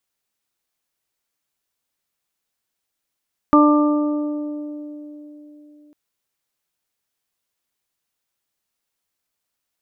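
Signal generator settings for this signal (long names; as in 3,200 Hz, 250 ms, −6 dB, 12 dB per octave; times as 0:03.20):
harmonic partials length 2.40 s, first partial 297 Hz, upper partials −7.5/−10/−2 dB, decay 3.83 s, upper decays 3.30/1.83/1.45 s, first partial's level −10 dB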